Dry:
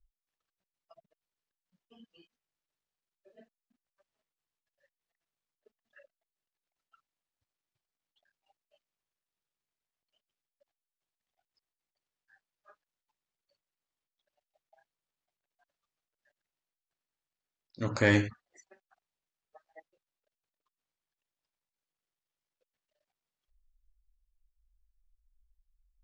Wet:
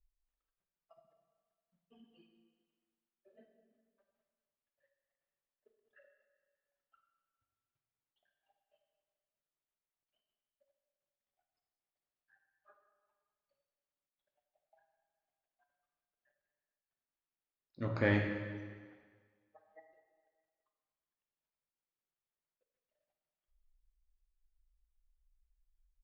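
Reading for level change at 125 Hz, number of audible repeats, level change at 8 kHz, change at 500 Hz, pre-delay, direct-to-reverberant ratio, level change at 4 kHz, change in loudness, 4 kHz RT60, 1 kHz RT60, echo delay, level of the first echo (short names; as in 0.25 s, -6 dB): -4.0 dB, 2, under -20 dB, -4.5 dB, 6 ms, 4.0 dB, -10.0 dB, -6.5 dB, 1.6 s, 1.7 s, 0.204 s, -19.0 dB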